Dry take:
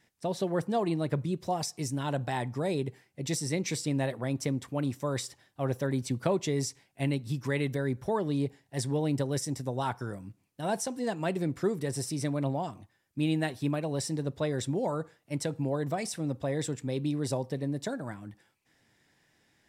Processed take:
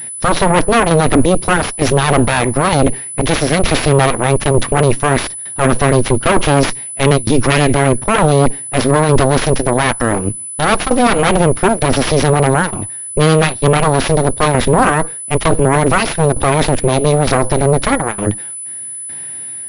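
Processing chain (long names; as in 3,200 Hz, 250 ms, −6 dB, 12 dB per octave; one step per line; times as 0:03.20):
harmonic generator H 5 −14 dB, 7 −8 dB, 8 −8 dB, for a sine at −15 dBFS
shaped tremolo saw down 1.1 Hz, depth 90%
boost into a limiter +30.5 dB
switching amplifier with a slow clock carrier 10,000 Hz
level −1 dB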